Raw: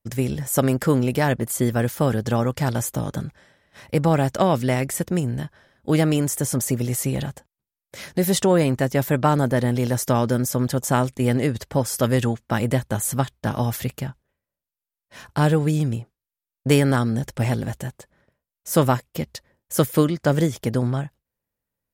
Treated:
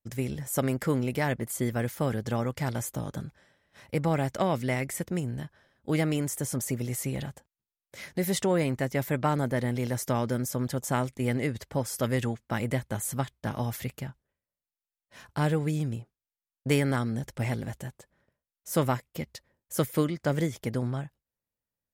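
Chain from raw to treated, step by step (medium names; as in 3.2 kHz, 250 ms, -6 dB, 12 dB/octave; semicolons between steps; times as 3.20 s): dynamic bell 2.1 kHz, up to +7 dB, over -49 dBFS, Q 5.1; trim -8 dB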